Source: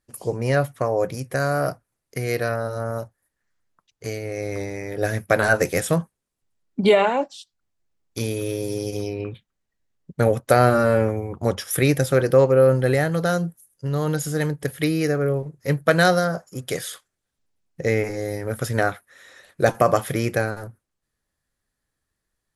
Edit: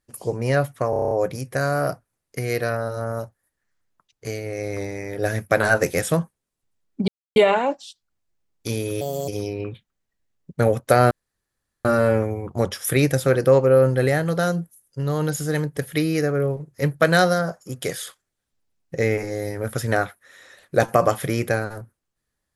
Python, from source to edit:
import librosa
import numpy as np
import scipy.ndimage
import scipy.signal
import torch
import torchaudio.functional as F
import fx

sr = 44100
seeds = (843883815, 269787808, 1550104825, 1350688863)

y = fx.edit(x, sr, fx.stutter(start_s=0.9, slice_s=0.03, count=8),
    fx.insert_silence(at_s=6.87, length_s=0.28),
    fx.speed_span(start_s=8.52, length_s=0.36, speed=1.34),
    fx.insert_room_tone(at_s=10.71, length_s=0.74), tone=tone)